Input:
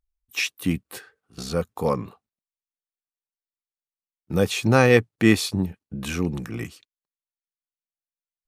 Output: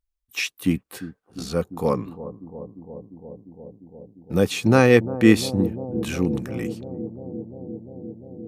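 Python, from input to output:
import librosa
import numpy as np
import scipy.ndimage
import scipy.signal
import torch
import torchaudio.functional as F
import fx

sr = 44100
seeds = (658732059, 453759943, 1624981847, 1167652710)

y = fx.dynamic_eq(x, sr, hz=290.0, q=0.99, threshold_db=-30.0, ratio=4.0, max_db=5)
y = fx.echo_bbd(y, sr, ms=349, stages=2048, feedback_pct=83, wet_db=-14.0)
y = F.gain(torch.from_numpy(y), -1.0).numpy()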